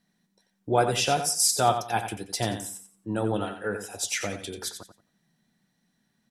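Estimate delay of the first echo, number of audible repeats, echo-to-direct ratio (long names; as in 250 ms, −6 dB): 89 ms, 3, −8.5 dB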